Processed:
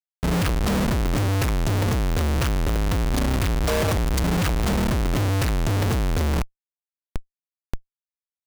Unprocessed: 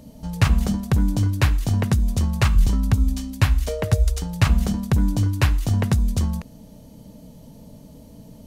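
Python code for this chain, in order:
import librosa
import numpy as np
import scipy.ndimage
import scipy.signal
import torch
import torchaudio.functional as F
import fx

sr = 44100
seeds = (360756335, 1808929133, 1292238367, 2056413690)

y = fx.peak_eq(x, sr, hz=190.0, db=-3.5, octaves=1.0)
y = fx.schmitt(y, sr, flips_db=-34.0)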